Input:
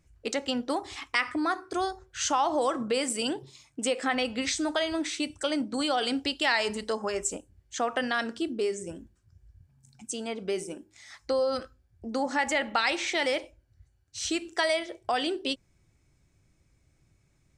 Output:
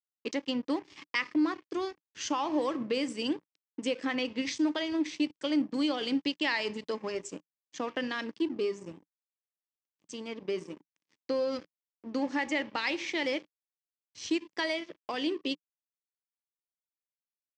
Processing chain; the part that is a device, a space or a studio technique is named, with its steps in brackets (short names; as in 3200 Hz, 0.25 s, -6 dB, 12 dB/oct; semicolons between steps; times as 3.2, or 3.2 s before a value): blown loudspeaker (crossover distortion -41.5 dBFS; speaker cabinet 130–5700 Hz, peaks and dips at 170 Hz +5 dB, 300 Hz +7 dB, 720 Hz -10 dB, 1400 Hz -9 dB, 3900 Hz -5 dB); gain -1.5 dB